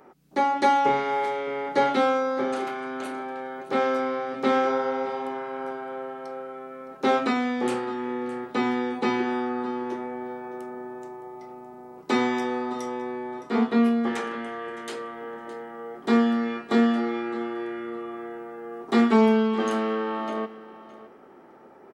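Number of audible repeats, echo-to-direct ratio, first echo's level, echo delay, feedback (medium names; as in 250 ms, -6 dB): 2, -17.0 dB, -17.0 dB, 614 ms, 18%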